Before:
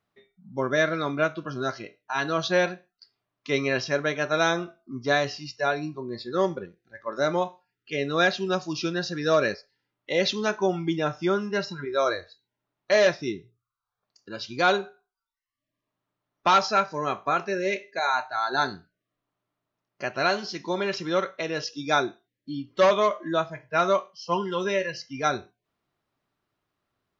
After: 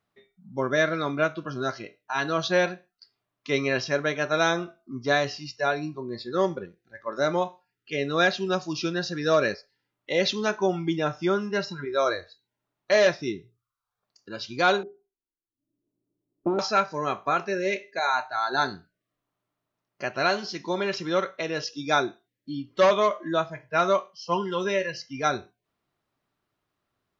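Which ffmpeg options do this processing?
-filter_complex "[0:a]asettb=1/sr,asplit=3[s0][s1][s2];[s0]atrim=end=14.834[s3];[s1]atrim=start=14.83:end=16.59,asetpts=PTS-STARTPTS,afade=t=in:d=0.004:c=qsin,afade=t=out:st=1.756:d=0.004:c=qsin,lowpass=f=340:t=q:w=4.1[s4];[s2]atrim=start=16.586[s5];[s3][s4]acrossfade=d=0.004:c1=hsin:c2=qsin[s6];[s6][s5]acrossfade=d=0.004:c1=qsin:c2=hsin"

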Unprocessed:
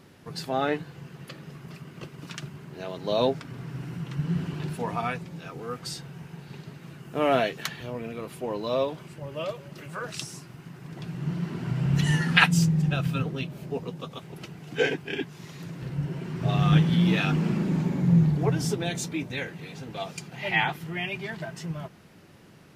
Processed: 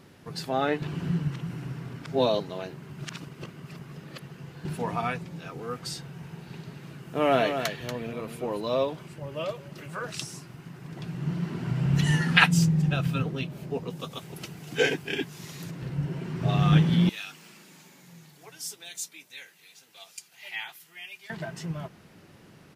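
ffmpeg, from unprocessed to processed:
-filter_complex "[0:a]asplit=3[s0][s1][s2];[s0]afade=t=out:st=6.23:d=0.02[s3];[s1]aecho=1:1:236:0.398,afade=t=in:st=6.23:d=0.02,afade=t=out:st=8.6:d=0.02[s4];[s2]afade=t=in:st=8.6:d=0.02[s5];[s3][s4][s5]amix=inputs=3:normalize=0,asettb=1/sr,asplit=3[s6][s7][s8];[s6]atrim=end=13.904[s9];[s7]atrim=start=13.9:end=15.71,asetpts=PTS-STARTPTS,afade=t=in:d=0.004:c=qsin,afade=t=out:st=1.806:d=0.004:c=qsin,highshelf=f=4900:g=11[s10];[s8]atrim=start=15.706[s11];[s9][s10]acrossfade=d=0.004:c1=hsin:c2=qsin[s12];[s12][s11]acrossfade=d=0.004:c1=qsin:c2=hsin,asettb=1/sr,asplit=3[s13][s14][s15];[s13]atrim=end=17.094[s16];[s14]atrim=start=17.09:end=21.3,asetpts=PTS-STARTPTS,afade=t=in:d=0.004:c=qsin,afade=t=out:st=4.206:d=0.004:c=qsin,aderivative[s17];[s15]atrim=start=21.296[s18];[s16][s17]acrossfade=d=0.004:c1=hsin:c2=qsin[s19];[s19][s18]acrossfade=d=0.004:c1=qsin:c2=hsin,asplit=3[s20][s21][s22];[s20]atrim=end=0.822[s23];[s21]atrim=start=0.818:end=4.652,asetpts=PTS-STARTPTS,areverse[s24];[s22]atrim=start=4.648[s25];[s23][s24]acrossfade=d=0.004:c1=hsin:c2=hsin[s26];[s26][s25]acrossfade=d=0.004:c1=hsin:c2=hsin"

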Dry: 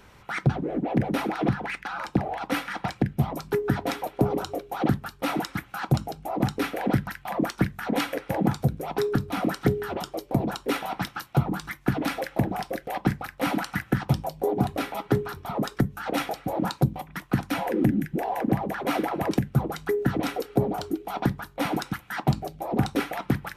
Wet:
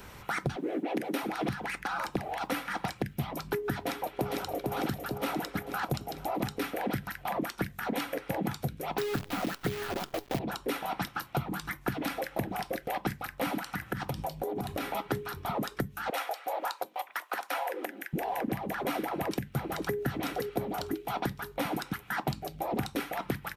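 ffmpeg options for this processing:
-filter_complex "[0:a]asettb=1/sr,asplit=3[s0][s1][s2];[s0]atrim=end=0.564[s3];[s1]atrim=start=0.56:end=1.23,asetpts=PTS-STARTPTS,afade=t=in:d=0.004:c=qsin,afade=t=out:st=0.666:d=0.004:c=qsin,highpass=f=320:t=q:w=1.9[s4];[s2]atrim=start=1.226[s5];[s3][s4]acrossfade=d=0.004:c1=hsin:c2=qsin[s6];[s6][s5]acrossfade=d=0.004:c1=qsin:c2=hsin,asplit=2[s7][s8];[s8]afade=t=in:st=3.84:d=0.01,afade=t=out:st=4.72:d=0.01,aecho=0:1:450|900|1350|1800|2250|2700|3150|3600:0.530884|0.318531|0.191118|0.114671|0.0688026|0.0412816|0.0247689|0.0148614[s9];[s7][s9]amix=inputs=2:normalize=0,asettb=1/sr,asplit=3[s10][s11][s12];[s10]atrim=end=8.984[s13];[s11]atrim=start=8.98:end=10.39,asetpts=PTS-STARTPTS,afade=t=in:d=0.004:c=qsin,afade=t=out:st=1.406:d=0.004:c=qsin,acrusher=bits=6:dc=4:mix=0:aa=0.000001[s14];[s12]atrim=start=10.386[s15];[s13][s14]acrossfade=d=0.004:c1=hsin:c2=qsin[s16];[s16][s15]acrossfade=d=0.004:c1=qsin:c2=hsin,asettb=1/sr,asplit=3[s17][s18][s19];[s17]atrim=end=13.594[s20];[s18]atrim=start=13.59:end=14.92,asetpts=PTS-STARTPTS,afade=t=in:d=0.004:c=qsin,afade=t=out:st=1.326:d=0.004:c=qsin,acompressor=threshold=0.0398:ratio=6:attack=3.2:release=140:knee=1:detection=peak[s21];[s19]atrim=start=14.916[s22];[s20][s21]acrossfade=d=0.004:c1=hsin:c2=qsin[s23];[s23][s22]acrossfade=d=0.004:c1=qsin:c2=hsin,asettb=1/sr,asplit=3[s24][s25][s26];[s24]atrim=end=16.104[s27];[s25]atrim=start=16.1:end=18.13,asetpts=PTS-STARTPTS,afade=t=in:d=0.004:c=qsin,afade=t=out:st=2.026:d=0.004:c=qsin,highpass=f=550:w=0.5412,highpass=f=550:w=1.3066[s28];[s26]atrim=start=18.126[s29];[s27][s28]acrossfade=d=0.004:c1=hsin:c2=qsin[s30];[s30][s29]acrossfade=d=0.004:c1=qsin:c2=hsin,asplit=2[s31][s32];[s32]afade=t=in:st=19.05:d=0.01,afade=t=out:st=19.98:d=0.01,aecho=0:1:510|1020|1530|2040|2550:0.473151|0.189261|0.0757042|0.0302817|0.0121127[s33];[s31][s33]amix=inputs=2:normalize=0,highshelf=f=11000:g=11,acrossover=split=1600|4600[s34][s35][s36];[s34]acompressor=threshold=0.0158:ratio=4[s37];[s35]acompressor=threshold=0.00501:ratio=4[s38];[s36]acompressor=threshold=0.00282:ratio=4[s39];[s37][s38][s39]amix=inputs=3:normalize=0,volume=1.58"

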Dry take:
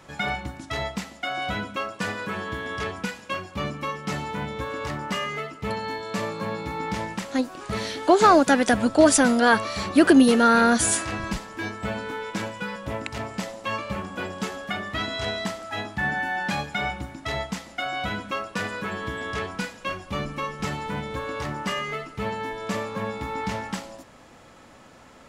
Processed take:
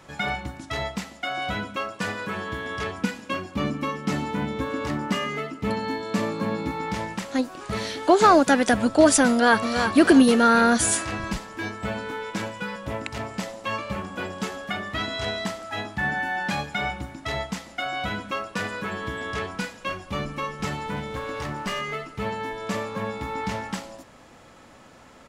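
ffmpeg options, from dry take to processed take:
-filter_complex "[0:a]asettb=1/sr,asplit=3[s0][s1][s2];[s0]atrim=end=3.024[s3];[s1]atrim=start=3.02:end=6.71,asetpts=PTS-STARTPTS,afade=t=in:d=0.004:c=qsin,afade=t=out:st=3.686:d=0.004:c=qsin,equalizer=f=260:t=o:w=0.77:g=10.5[s4];[s2]atrim=start=6.706[s5];[s3][s4]acrossfade=d=0.004:c1=hsin:c2=qsin[s6];[s6][s5]acrossfade=d=0.004:c1=qsin:c2=hsin,asplit=2[s7][s8];[s8]afade=t=in:st=9.29:d=0.01,afade=t=out:st=9.89:d=0.01,aecho=0:1:330|660|990|1320:0.473151|0.141945|0.0425836|0.0127751[s9];[s7][s9]amix=inputs=2:normalize=0,asettb=1/sr,asplit=3[s10][s11][s12];[s10]atrim=end=20.964[s13];[s11]atrim=start=20.96:end=21.81,asetpts=PTS-STARTPTS,afade=t=in:d=0.004:c=qsin,afade=t=out:st=0.846:d=0.004:c=qsin,aeval=exprs='clip(val(0),-1,0.0447)':c=same[s14];[s12]atrim=start=21.806[s15];[s13][s14]acrossfade=d=0.004:c1=hsin:c2=qsin[s16];[s16][s15]acrossfade=d=0.004:c1=qsin:c2=hsin"

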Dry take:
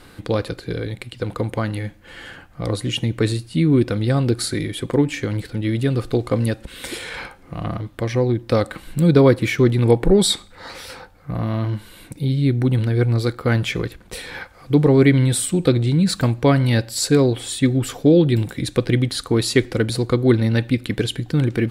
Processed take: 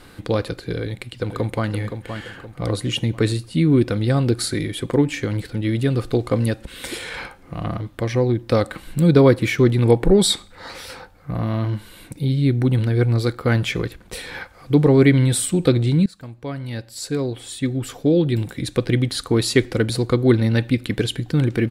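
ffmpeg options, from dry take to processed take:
-filter_complex "[0:a]asplit=2[s0][s1];[s1]afade=t=in:st=0.79:d=0.01,afade=t=out:st=1.68:d=0.01,aecho=0:1:520|1040|1560|2080|2600:0.398107|0.159243|0.0636971|0.0254789|0.0101915[s2];[s0][s2]amix=inputs=2:normalize=0,asplit=2[s3][s4];[s3]atrim=end=16.06,asetpts=PTS-STARTPTS,afade=t=out:st=16.056:d=0.004:c=hsin:silence=0.0668344[s5];[s4]atrim=start=16.06,asetpts=PTS-STARTPTS,afade=t=in:d=3.23:silence=0.0668344[s6];[s5][s6]concat=n=2:v=0:a=1"

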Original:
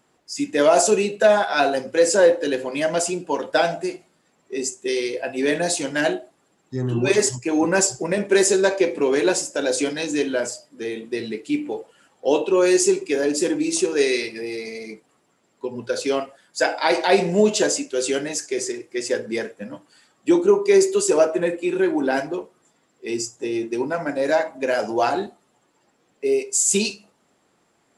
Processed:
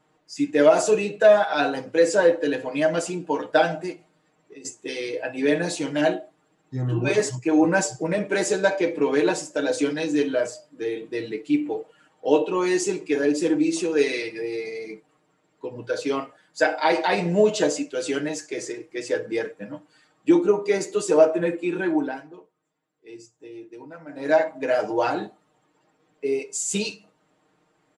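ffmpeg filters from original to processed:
-filter_complex "[0:a]asettb=1/sr,asplit=3[s0][s1][s2];[s0]atrim=end=3.924[s3];[s1]atrim=start=3.92:end=4.65,asetpts=PTS-STARTPTS,afade=t=in:d=0.004:c=qsin,afade=t=out:st=0.726:d=0.004:c=qsin,acompressor=threshold=0.0141:ratio=6:attack=3.2:release=140:knee=1:detection=peak[s4];[s2]atrim=start=4.646[s5];[s3][s4]acrossfade=d=0.004:c1=hsin:c2=qsin[s6];[s6][s5]acrossfade=d=0.004:c1=qsin:c2=hsin,asplit=3[s7][s8][s9];[s7]atrim=end=22.18,asetpts=PTS-STARTPTS,afade=t=out:st=21.93:d=0.25:silence=0.188365[s10];[s8]atrim=start=22.18:end=24.09,asetpts=PTS-STARTPTS,volume=0.188[s11];[s9]atrim=start=24.09,asetpts=PTS-STARTPTS,afade=t=in:d=0.25:silence=0.188365[s12];[s10][s11][s12]concat=n=3:v=0:a=1,aemphasis=mode=reproduction:type=50kf,bandreject=f=5100:w=25,aecho=1:1:6.5:0.83,volume=0.708"

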